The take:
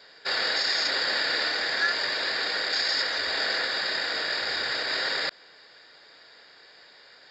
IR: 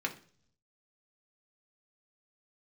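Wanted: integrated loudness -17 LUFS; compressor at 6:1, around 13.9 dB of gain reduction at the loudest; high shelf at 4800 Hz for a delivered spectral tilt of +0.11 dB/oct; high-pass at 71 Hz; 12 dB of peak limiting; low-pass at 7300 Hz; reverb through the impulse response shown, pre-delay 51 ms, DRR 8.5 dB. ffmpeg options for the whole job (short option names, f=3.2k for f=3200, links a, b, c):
-filter_complex "[0:a]highpass=71,lowpass=7.3k,highshelf=f=4.8k:g=6.5,acompressor=threshold=-36dB:ratio=6,alimiter=level_in=12dB:limit=-24dB:level=0:latency=1,volume=-12dB,asplit=2[a][b];[1:a]atrim=start_sample=2205,adelay=51[c];[b][c]afir=irnorm=-1:irlink=0,volume=-13.5dB[d];[a][d]amix=inputs=2:normalize=0,volume=26dB"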